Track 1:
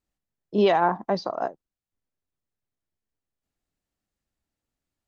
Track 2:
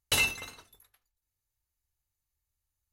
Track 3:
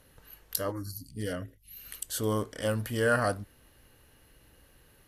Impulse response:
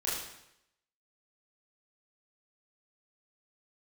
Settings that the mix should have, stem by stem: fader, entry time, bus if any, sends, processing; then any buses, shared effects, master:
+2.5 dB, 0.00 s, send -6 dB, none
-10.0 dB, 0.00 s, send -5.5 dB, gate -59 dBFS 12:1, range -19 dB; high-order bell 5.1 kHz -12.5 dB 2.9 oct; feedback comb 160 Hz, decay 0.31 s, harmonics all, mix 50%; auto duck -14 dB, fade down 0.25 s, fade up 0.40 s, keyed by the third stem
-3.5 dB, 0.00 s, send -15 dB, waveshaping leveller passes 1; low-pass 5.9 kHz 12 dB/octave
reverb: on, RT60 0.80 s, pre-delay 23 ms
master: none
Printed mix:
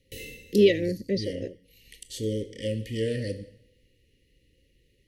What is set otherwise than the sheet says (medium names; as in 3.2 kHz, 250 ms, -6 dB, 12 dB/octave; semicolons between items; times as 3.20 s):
stem 1: send off; stem 2 -10.0 dB -> 0.0 dB; master: extra Chebyshev band-stop 540–1900 Hz, order 5